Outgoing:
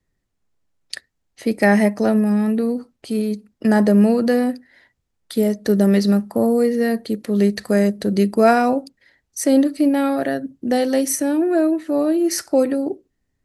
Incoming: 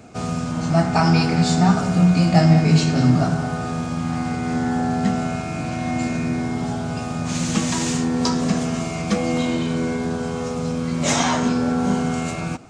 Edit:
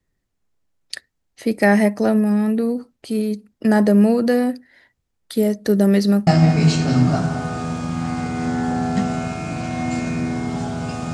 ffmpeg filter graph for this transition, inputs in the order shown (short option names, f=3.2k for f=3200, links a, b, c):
-filter_complex "[0:a]apad=whole_dur=11.13,atrim=end=11.13,atrim=end=6.272[a];[1:a]atrim=start=2.348:end=7.21[b];[a][b]acrossfade=d=0.004:c1=hsin:c2=hsin"